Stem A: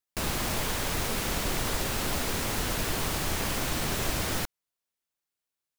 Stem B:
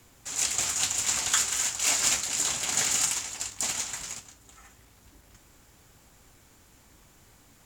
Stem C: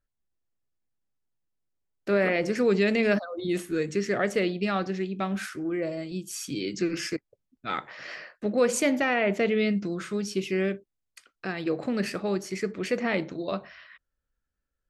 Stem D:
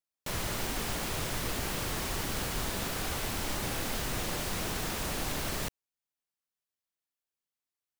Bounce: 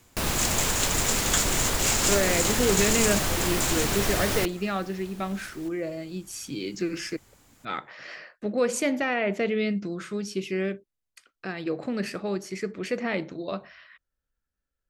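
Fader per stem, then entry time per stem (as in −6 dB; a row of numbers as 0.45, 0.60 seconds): +3.0, −1.0, −1.5, −15.5 decibels; 0.00, 0.00, 0.00, 0.00 seconds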